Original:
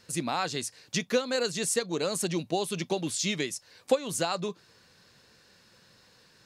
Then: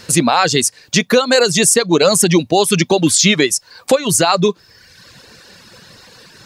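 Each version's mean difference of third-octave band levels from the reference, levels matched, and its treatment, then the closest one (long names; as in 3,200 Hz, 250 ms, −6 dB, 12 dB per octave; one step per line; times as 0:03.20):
3.0 dB: reverb reduction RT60 0.97 s
boost into a limiter +21 dB
level −1 dB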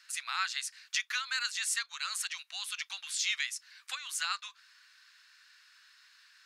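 12.0 dB: Butterworth high-pass 1,300 Hz 36 dB per octave
high-shelf EQ 3,700 Hz −9 dB
level +4.5 dB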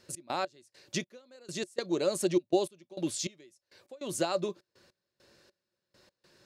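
8.0 dB: gate pattern "x.x..xx...x.xxx" 101 BPM −24 dB
hollow resonant body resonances 360/570 Hz, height 12 dB, ringing for 55 ms
level −4.5 dB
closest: first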